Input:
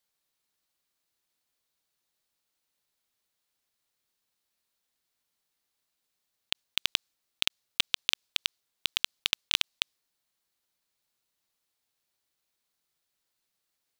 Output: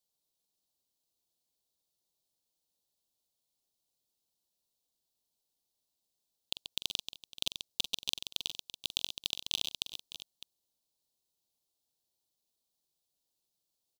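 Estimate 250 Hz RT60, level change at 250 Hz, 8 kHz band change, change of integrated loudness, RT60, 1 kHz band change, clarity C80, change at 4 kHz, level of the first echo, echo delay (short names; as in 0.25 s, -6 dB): none, -2.0 dB, -2.0 dB, -5.5 dB, none, -9.0 dB, none, -5.0 dB, -11.5 dB, 44 ms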